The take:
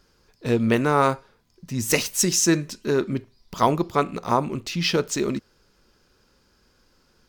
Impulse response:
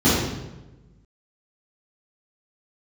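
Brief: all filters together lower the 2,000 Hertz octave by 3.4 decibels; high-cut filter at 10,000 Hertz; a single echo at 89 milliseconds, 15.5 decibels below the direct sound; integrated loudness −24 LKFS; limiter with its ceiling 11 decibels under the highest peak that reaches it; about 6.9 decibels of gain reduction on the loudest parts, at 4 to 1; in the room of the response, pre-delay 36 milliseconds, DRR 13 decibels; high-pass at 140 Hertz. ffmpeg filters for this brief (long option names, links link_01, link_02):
-filter_complex "[0:a]highpass=140,lowpass=10000,equalizer=frequency=2000:width_type=o:gain=-4.5,acompressor=threshold=-23dB:ratio=4,alimiter=limit=-21dB:level=0:latency=1,aecho=1:1:89:0.168,asplit=2[link_01][link_02];[1:a]atrim=start_sample=2205,adelay=36[link_03];[link_02][link_03]afir=irnorm=-1:irlink=0,volume=-34dB[link_04];[link_01][link_04]amix=inputs=2:normalize=0,volume=6.5dB"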